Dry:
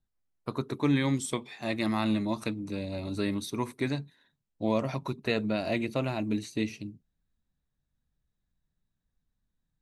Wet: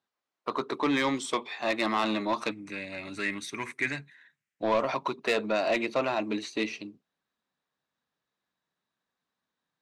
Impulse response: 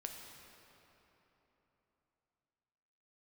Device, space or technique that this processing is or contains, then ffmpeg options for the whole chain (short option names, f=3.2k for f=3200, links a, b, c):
intercom: -filter_complex "[0:a]highpass=420,lowpass=4.8k,equalizer=f=1.1k:t=o:w=0.51:g=4.5,asoftclip=type=tanh:threshold=-26dB,asettb=1/sr,asplit=3[a][b][c];[a]atrim=end=2.514[d];[b]atrim=start=2.51:end=4.63,asetpts=PTS-STARTPTS,afade=t=in:d=0.004:c=qsin,afade=t=out:st=2.116:d=0.004:c=qsin,equalizer=f=125:t=o:w=1:g=6,equalizer=f=250:t=o:w=1:g=-4,equalizer=f=500:t=o:w=1:g=-9,equalizer=f=1k:t=o:w=1:g=-11,equalizer=f=2k:t=o:w=1:g=11,equalizer=f=4k:t=o:w=1:g=-10,equalizer=f=8k:t=o:w=1:g=6[e];[c]atrim=start=4.626[f];[d][e]acrossfade=d=0.004:c1=hsin:c2=qsin[g];[g][f]acrossfade=d=0.004:c1=qsin:c2=hsin,volume=7.5dB"